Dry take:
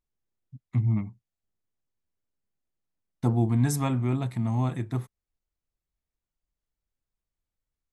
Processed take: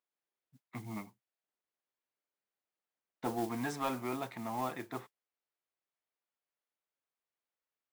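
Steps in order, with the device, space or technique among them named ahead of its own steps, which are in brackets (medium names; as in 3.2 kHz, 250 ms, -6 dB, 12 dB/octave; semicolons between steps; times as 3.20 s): carbon microphone (band-pass 480–3200 Hz; saturation -26 dBFS, distortion -15 dB; modulation noise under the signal 17 dB); trim +1 dB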